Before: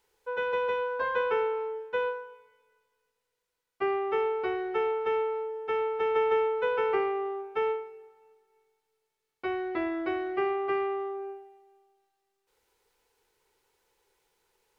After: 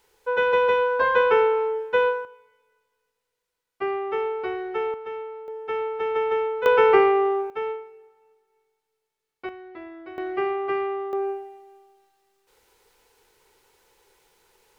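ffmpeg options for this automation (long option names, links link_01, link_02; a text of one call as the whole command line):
ffmpeg -i in.wav -af "asetnsamples=nb_out_samples=441:pad=0,asendcmd='2.25 volume volume 1.5dB;4.94 volume volume -5.5dB;5.48 volume volume 1.5dB;6.66 volume volume 11dB;7.5 volume volume -0.5dB;9.49 volume volume -9.5dB;10.18 volume volume 3dB;11.13 volume volume 11dB',volume=9dB" out.wav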